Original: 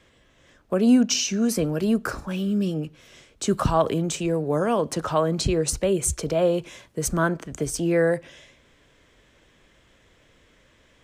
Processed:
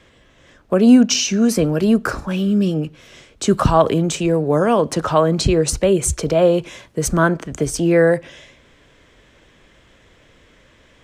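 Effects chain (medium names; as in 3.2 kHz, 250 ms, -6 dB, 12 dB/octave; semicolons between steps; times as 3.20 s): treble shelf 7.8 kHz -6 dB; trim +7 dB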